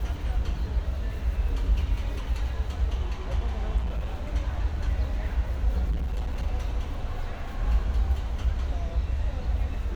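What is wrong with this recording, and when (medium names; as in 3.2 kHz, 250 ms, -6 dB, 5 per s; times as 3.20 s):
3.77–4.30 s: clipped -25 dBFS
5.90–6.43 s: clipped -25 dBFS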